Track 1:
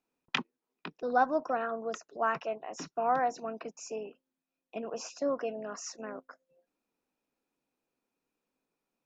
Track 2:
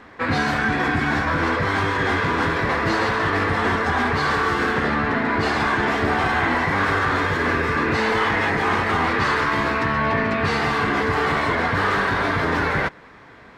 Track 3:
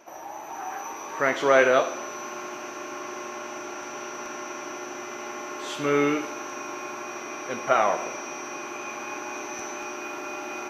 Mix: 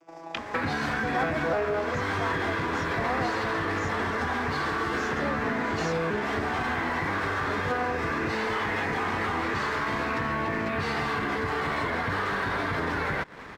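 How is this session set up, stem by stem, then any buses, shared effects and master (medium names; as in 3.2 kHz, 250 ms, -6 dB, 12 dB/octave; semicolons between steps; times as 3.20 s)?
-4.5 dB, 0.00 s, no bus, no send, none
+1.0 dB, 0.35 s, bus A, no send, compression, threshold -27 dBFS, peak gain reduction 10 dB
-3.0 dB, 0.00 s, bus A, no send, vocoder on a broken chord major triad, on E3, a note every 381 ms
bus A: 0.0 dB, waveshaping leveller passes 1; compression, threshold -25 dBFS, peak gain reduction 10.5 dB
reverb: none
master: none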